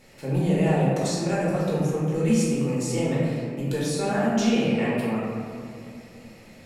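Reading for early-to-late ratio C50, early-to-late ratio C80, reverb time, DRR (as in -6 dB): -1.5 dB, 0.5 dB, 2.6 s, -7.0 dB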